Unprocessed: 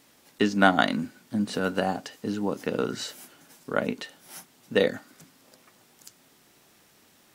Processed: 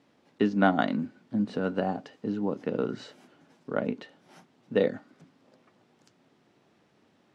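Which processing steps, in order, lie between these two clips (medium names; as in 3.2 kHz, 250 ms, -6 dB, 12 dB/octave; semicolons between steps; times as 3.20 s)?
band-pass 100–2700 Hz; peaking EQ 1.9 kHz -7 dB 2.5 oct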